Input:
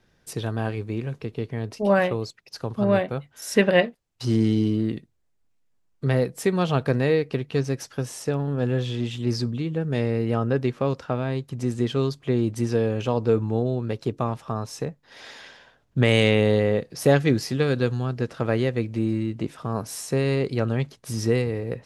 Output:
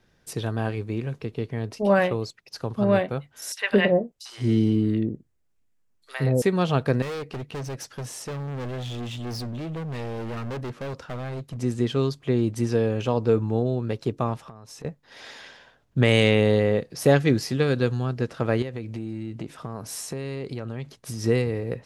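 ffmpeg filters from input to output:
-filter_complex "[0:a]asettb=1/sr,asplit=3[a][b][c];[a]atrim=end=3.524[d];[b]atrim=start=3.52:end=6.42,asetpts=PTS-STARTPTS,afade=t=in:d=0.004:c=qsin,afade=t=out:st=2.896:d=0.004:c=qsin,acrossover=split=780|4100[e][f][g];[f]adelay=50[h];[e]adelay=170[i];[i][h][g]amix=inputs=3:normalize=0,atrim=end_sample=127890[j];[c]atrim=start=6.416[k];[d][j]acrossfade=d=0.004:c1=hsin:c2=qsin[l];[l][k]acrossfade=d=0.004:c1=qsin:c2=hsin,asettb=1/sr,asplit=3[m][n][o];[m]atrim=end=7.024[p];[n]atrim=start=7.02:end=11.57,asetpts=PTS-STARTPTS,afade=t=in:d=0.004:c=qsin,afade=t=out:st=4.546:d=0.004:c=qsin,volume=30dB,asoftclip=hard,volume=-30dB[q];[o]atrim=start=11.566[r];[p][q]acrossfade=d=0.004:c1=hsin:c2=qsin[s];[s][r]acrossfade=d=0.004:c1=qsin:c2=hsin,asettb=1/sr,asplit=3[t][u][v];[t]atrim=end=14.394[w];[u]atrim=start=14.39:end=14.85,asetpts=PTS-STARTPTS,afade=t=in:d=0.004:c=qsin,afade=t=out:st=0.456:d=0.004:c=qsin,acompressor=threshold=-39dB:ratio=10:attack=3.2:release=140:knee=1:detection=peak[x];[v]atrim=start=14.846[y];[w][x]acrossfade=d=0.004:c1=hsin:c2=qsin[z];[z][y]acrossfade=d=0.004:c1=qsin:c2=hsin,asettb=1/sr,asplit=3[aa][ab][ac];[aa]atrim=end=18.624[ad];[ab]atrim=start=18.62:end=21.24,asetpts=PTS-STARTPTS,afade=t=in:d=0.004:c=qsin,afade=t=out:st=2.616:d=0.004:c=qsin,acompressor=threshold=-28dB:ratio=6:attack=3.2:release=140:knee=1:detection=peak[ae];[ac]atrim=start=21.236[af];[ad][ae]acrossfade=d=0.004:c1=hsin:c2=qsin[ag];[ag][af]acrossfade=d=0.004:c1=qsin:c2=hsin"

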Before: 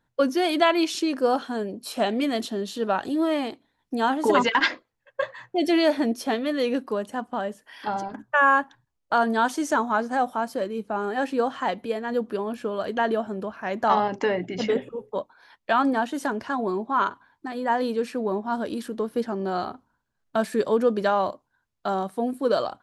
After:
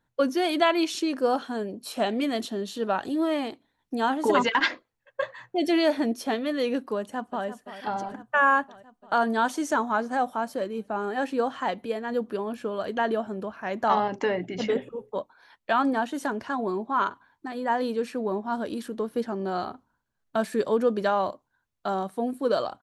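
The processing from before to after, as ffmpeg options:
-filter_complex "[0:a]asplit=2[a][b];[b]afade=t=in:st=6.98:d=0.01,afade=t=out:st=7.46:d=0.01,aecho=0:1:340|680|1020|1360|1700|2040|2380|2720|3060|3400|3740|4080:0.251189|0.188391|0.141294|0.10597|0.0794777|0.0596082|0.0447062|0.0335296|0.0251472|0.0188604|0.0141453|0.010609[c];[a][c]amix=inputs=2:normalize=0,bandreject=f=5k:w=23,volume=-2dB"

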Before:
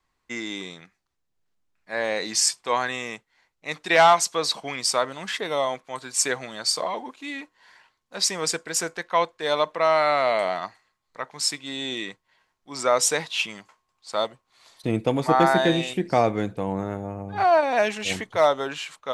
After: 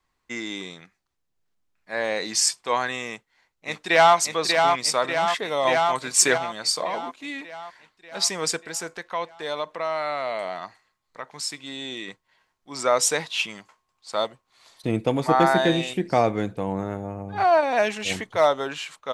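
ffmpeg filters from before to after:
-filter_complex "[0:a]asplit=2[a][b];[b]afade=t=in:st=3.08:d=0.01,afade=t=out:st=4.16:d=0.01,aecho=0:1:590|1180|1770|2360|2950|3540|4130|4720|5310|5900:0.595662|0.38718|0.251667|0.163584|0.106329|0.0691141|0.0449242|0.0292007|0.0189805|0.0123373[c];[a][c]amix=inputs=2:normalize=0,asettb=1/sr,asplit=3[d][e][f];[d]atrim=end=5.654[g];[e]atrim=start=5.65:end=6.38,asetpts=PTS-STARTPTS,afade=t=in:d=0.004:c=qsin,afade=t=out:st=0.726:d=0.004:c=qsin,acontrast=37[h];[f]atrim=start=6.376[i];[g][h]acrossfade=d=0.004:c1=hsin:c2=qsin[j];[j][i]acrossfade=d=0.004:c1=qsin:c2=hsin,asettb=1/sr,asplit=3[k][l][m];[k]atrim=end=8.654[n];[l]atrim=start=8.65:end=12.08,asetpts=PTS-STARTPTS,afade=t=in:d=0.004:c=qsin,afade=t=out:st=3.426:d=0.004:c=qsin,acompressor=threshold=-35dB:ratio=1.5:attack=3.2:release=140:knee=1:detection=peak[o];[m]atrim=start=12.076[p];[n][o]acrossfade=d=0.004:c1=hsin:c2=qsin[q];[q][p]acrossfade=d=0.004:c1=qsin:c2=hsin"

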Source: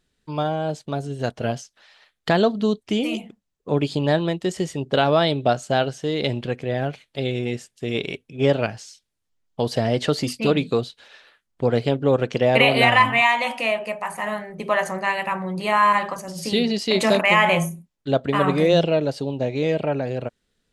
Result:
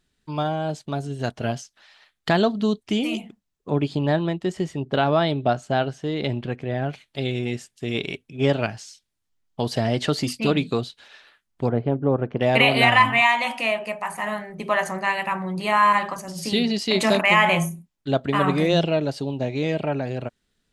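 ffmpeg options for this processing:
-filter_complex "[0:a]asettb=1/sr,asplit=3[a][b][c];[a]atrim=end=3.704[d];[b]atrim=start=3.7:end=6.89,asetpts=PTS-STARTPTS,afade=t=in:d=0.004:c=qsin,afade=t=out:st=3.186:d=0.004:c=qsin,highshelf=f=3.5k:g=-10.5[e];[c]atrim=start=6.886[f];[d][e]acrossfade=d=0.004:c1=hsin:c2=qsin[g];[g][f]acrossfade=d=0.004:c1=qsin:c2=hsin,asettb=1/sr,asplit=3[h][i][j];[h]atrim=end=11.694[k];[i]atrim=start=11.69:end=12.41,asetpts=PTS-STARTPTS,afade=t=in:d=0.004:c=qsin,afade=t=out:st=0.716:d=0.004:c=qsin,lowpass=1.1k[l];[j]atrim=start=12.406[m];[k][l]acrossfade=d=0.004:c1=hsin:c2=qsin[n];[n][m]acrossfade=d=0.004:c1=qsin:c2=hsin,equalizer=f=500:t=o:w=0.41:g=-6"

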